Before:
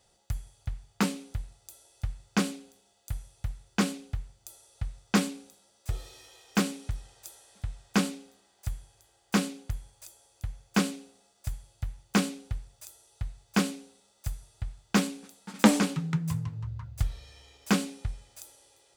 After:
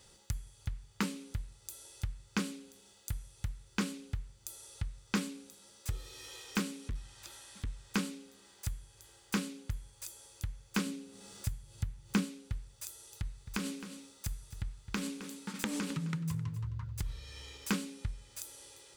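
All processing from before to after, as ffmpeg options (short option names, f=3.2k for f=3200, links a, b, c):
-filter_complex "[0:a]asettb=1/sr,asplit=3[a][b][c];[a]atrim=end=6.884[d];[b]atrim=start=6.88:end=7.67,asetpts=PTS-STARTPTS,afade=t=in:d=0.004:c=qsin,afade=t=out:st=0.786:d=0.004:c=qsin,equalizer=f=460:w=3.8:g=-11,acrossover=split=4600[e][f];[f]acompressor=threshold=-59dB:ratio=4:attack=1:release=60[g];[e][g]amix=inputs=2:normalize=0,asoftclip=type=hard:threshold=-30.5dB[h];[c]atrim=start=7.666[i];[d][h]acrossfade=d=0.004:c1=hsin:c2=qsin[j];[j][i]acrossfade=d=0.004:c1=qsin:c2=hsin,asettb=1/sr,asplit=3[k][l][m];[k]atrim=end=10.864[n];[l]atrim=start=10.86:end=12.25,asetpts=PTS-STARTPTS,afade=t=in:d=0.004:c=qsin,afade=t=out:st=1.386:d=0.004:c=qsin,equalizer=f=150:w=0.55:g=6.5,acompressor=mode=upward:threshold=-47dB:ratio=2.5:attack=3.2:release=140:knee=2.83:detection=peak[o];[m]atrim=start=12.246[p];[n][o]acrossfade=d=0.004:c1=hsin:c2=qsin[q];[q][p]acrossfade=d=0.004:c1=qsin:c2=hsin,asettb=1/sr,asplit=3[r][s][t];[r]atrim=end=12.864[u];[s]atrim=start=12.86:end=17.21,asetpts=PTS-STARTPTS,afade=t=in:d=0.004:c=qsin,afade=t=out:st=4.346:d=0.004:c=qsin,acompressor=threshold=-27dB:ratio=6:attack=3.2:release=140:knee=1:detection=peak,aecho=1:1:263:0.158,atrim=end_sample=191835[v];[t]atrim=start=17.206[w];[u][v]acrossfade=d=0.004:c1=hsin:c2=qsin[x];[x][w]acrossfade=d=0.004:c1=qsin:c2=hsin,equalizer=f=700:w=4.2:g=-14.5,acompressor=threshold=-50dB:ratio=2,volume=7.5dB"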